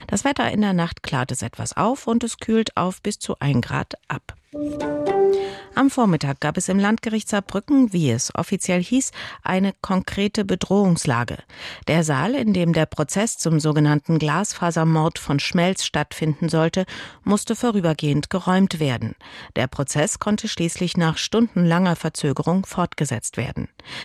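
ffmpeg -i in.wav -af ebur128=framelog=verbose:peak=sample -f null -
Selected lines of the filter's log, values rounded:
Integrated loudness:
  I:         -21.4 LUFS
  Threshold: -31.5 LUFS
Loudness range:
  LRA:         2.9 LU
  Threshold: -41.3 LUFS
  LRA low:   -22.9 LUFS
  LRA high:  -20.0 LUFS
Sample peak:
  Peak:       -7.1 dBFS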